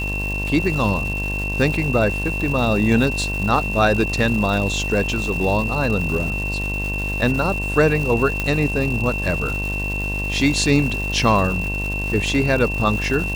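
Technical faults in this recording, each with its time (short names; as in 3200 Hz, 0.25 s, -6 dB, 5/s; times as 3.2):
buzz 50 Hz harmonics 22 -26 dBFS
crackle 460/s -27 dBFS
tone 2700 Hz -25 dBFS
8.4 pop -8 dBFS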